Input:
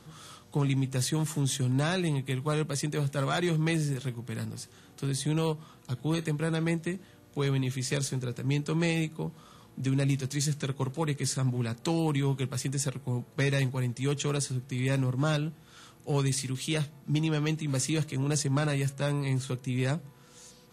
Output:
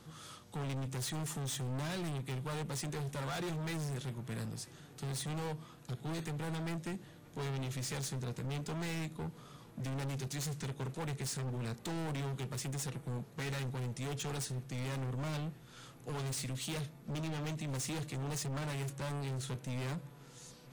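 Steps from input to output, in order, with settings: hard clip -33.5 dBFS, distortion -6 dB; dark delay 0.982 s, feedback 69%, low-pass 3000 Hz, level -22.5 dB; gain -3 dB

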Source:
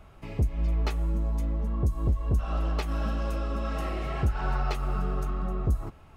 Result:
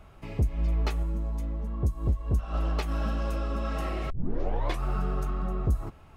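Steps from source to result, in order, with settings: 1.03–2.54 upward expander 1.5:1, over -31 dBFS; 4.1 tape start 0.73 s

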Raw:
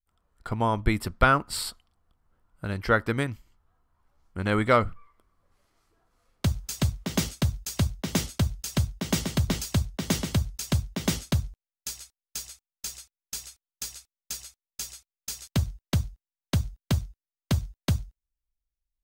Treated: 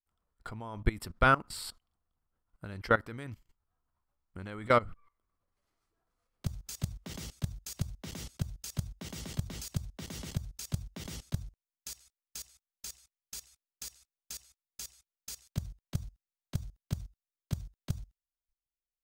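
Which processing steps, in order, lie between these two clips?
level quantiser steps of 20 dB; gain -1.5 dB

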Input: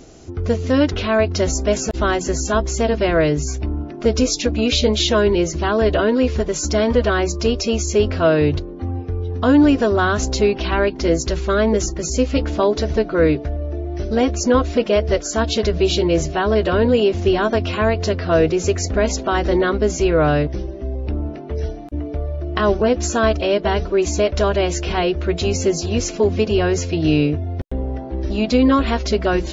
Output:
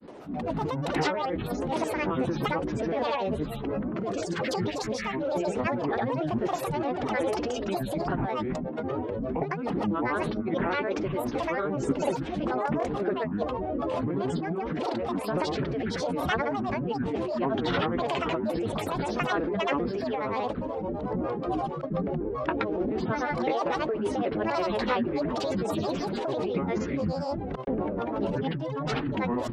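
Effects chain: negative-ratio compressor -22 dBFS, ratio -1; three-band isolator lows -22 dB, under 180 Hz, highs -23 dB, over 2700 Hz; grains, grains 27/s, pitch spread up and down by 12 st

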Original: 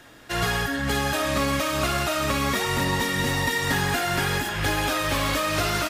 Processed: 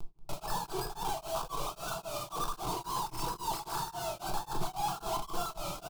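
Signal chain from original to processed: sine-wave speech; LPF 1200 Hz 12 dB/oct; upward compressor, threshold -35 dBFS; Schmitt trigger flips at -33 dBFS; fixed phaser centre 370 Hz, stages 8; wow and flutter 120 cents; echo 0.184 s -13.5 dB; shoebox room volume 190 m³, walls mixed, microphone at 0.76 m; beating tremolo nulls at 3.7 Hz; gain -4.5 dB

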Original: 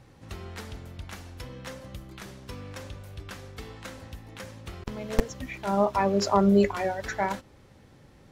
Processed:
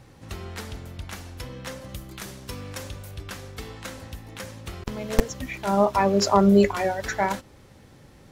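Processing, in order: high shelf 6000 Hz +4 dB, from 1.89 s +10.5 dB, from 3.11 s +5.5 dB; gain +3.5 dB

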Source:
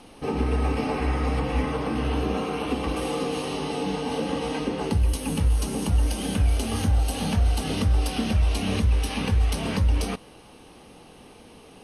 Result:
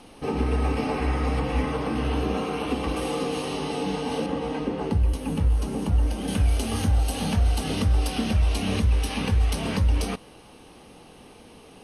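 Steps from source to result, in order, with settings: 4.26–6.28 high shelf 2700 Hz -10.5 dB

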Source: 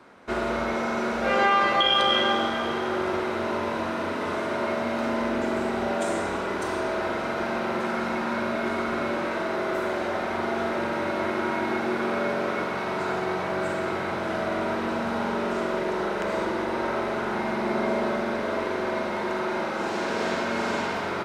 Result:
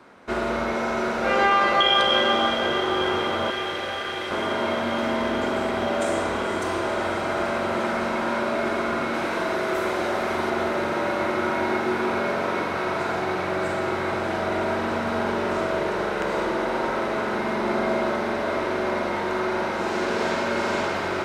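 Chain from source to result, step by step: 3.5–4.31 steep high-pass 1500 Hz 72 dB/oct; 9.14–10.5 high shelf 4800 Hz +6.5 dB; diffused feedback echo 0.501 s, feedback 80%, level -9.5 dB; gain +1.5 dB

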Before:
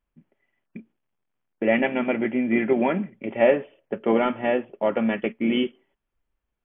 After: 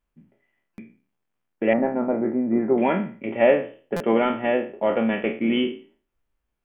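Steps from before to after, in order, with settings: spectral trails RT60 0.40 s; 1.73–2.78 LPF 1200 Hz 24 dB/oct; stuck buffer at 0.74/3.96, samples 256, times 6

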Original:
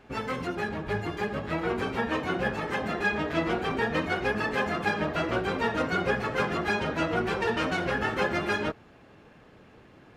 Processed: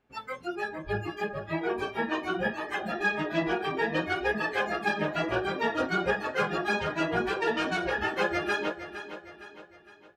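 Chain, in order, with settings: spectral noise reduction 19 dB; on a send: feedback echo 0.461 s, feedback 45%, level -11.5 dB

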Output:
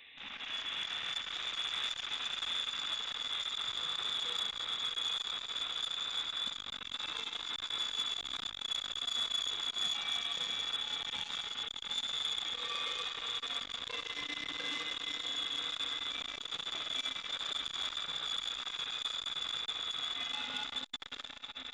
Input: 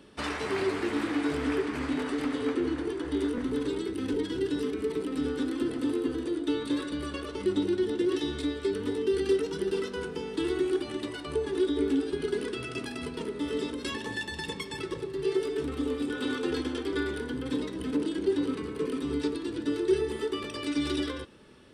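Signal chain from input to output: rattling part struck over -38 dBFS, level -26 dBFS; compressor 12:1, threshold -29 dBFS, peak gain reduction 11 dB; limiter -30.5 dBFS, peak gain reduction 10 dB; AGC gain up to 6 dB; short-mantissa float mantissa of 2-bit; resonator 280 Hz, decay 1.2 s, mix 50%; diffused feedback echo 0.763 s, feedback 62%, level -7.5 dB; spring tank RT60 3.2 s, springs 33 ms, chirp 45 ms, DRR -1 dB; inverted band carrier 3800 Hz; band noise 1800–2900 Hz -58 dBFS; core saturation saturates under 2900 Hz

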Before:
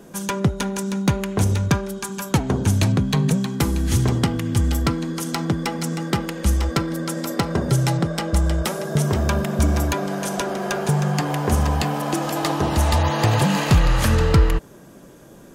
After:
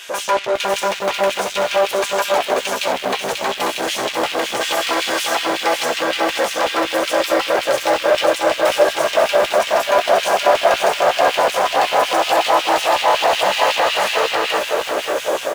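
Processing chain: 4.6–5.34 spectral whitening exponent 0.6; AGC gain up to 12 dB; limiter -12.5 dBFS, peak gain reduction 11.5 dB; overdrive pedal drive 32 dB, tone 2400 Hz, clips at -12.5 dBFS; LFO high-pass square 5.4 Hz 580–2800 Hz; doubler 15 ms -11 dB; lo-fi delay 0.539 s, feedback 35%, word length 6-bit, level -4 dB

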